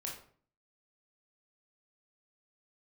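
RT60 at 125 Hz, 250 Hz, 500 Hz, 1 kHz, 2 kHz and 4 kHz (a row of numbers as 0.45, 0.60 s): 0.65, 0.60, 0.50, 0.45, 0.40, 0.35 s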